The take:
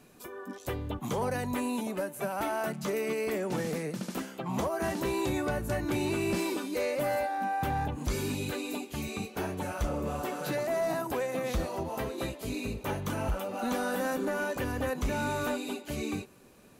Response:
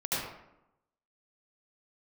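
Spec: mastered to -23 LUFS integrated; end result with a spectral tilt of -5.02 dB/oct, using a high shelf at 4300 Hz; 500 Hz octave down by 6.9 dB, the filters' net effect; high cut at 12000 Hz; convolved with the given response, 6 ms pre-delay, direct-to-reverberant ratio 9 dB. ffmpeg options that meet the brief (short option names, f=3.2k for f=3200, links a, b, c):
-filter_complex "[0:a]lowpass=12k,equalizer=f=500:t=o:g=-9,highshelf=f=4.3k:g=-5,asplit=2[a][b];[1:a]atrim=start_sample=2205,adelay=6[c];[b][c]afir=irnorm=-1:irlink=0,volume=-17dB[d];[a][d]amix=inputs=2:normalize=0,volume=12.5dB"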